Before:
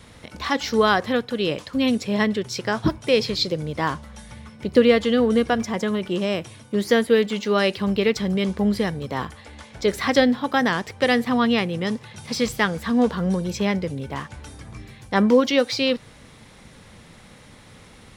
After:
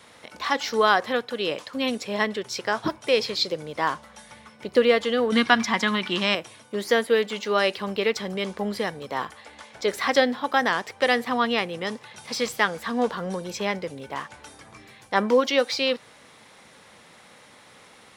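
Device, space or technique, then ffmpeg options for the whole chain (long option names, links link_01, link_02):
filter by subtraction: -filter_complex "[0:a]asplit=2[link_01][link_02];[link_02]lowpass=780,volume=-1[link_03];[link_01][link_03]amix=inputs=2:normalize=0,asettb=1/sr,asplit=3[link_04][link_05][link_06];[link_04]atrim=end=5.324[link_07];[link_05]atrim=start=5.32:end=6.35,asetpts=PTS-STARTPTS,afade=type=in:duration=0.004:curve=qsin,afade=type=out:start_time=1.026:duration=0.004:curve=qsin,equalizer=frequency=125:width_type=o:width=1:gain=4,equalizer=frequency=250:width_type=o:width=1:gain=9,equalizer=frequency=500:width_type=o:width=1:gain=-9,equalizer=frequency=1000:width_type=o:width=1:gain=7,equalizer=frequency=2000:width_type=o:width=1:gain=7,equalizer=frequency=4000:width_type=o:width=1:gain=10[link_08];[link_06]atrim=start=6.346[link_09];[link_07][link_08]acrossfade=duration=0.004:curve1=hsin:curve2=qsin[link_10];[link_10][link_09]acrossfade=duration=0.004:curve1=qsin:curve2=hsin,volume=-1.5dB"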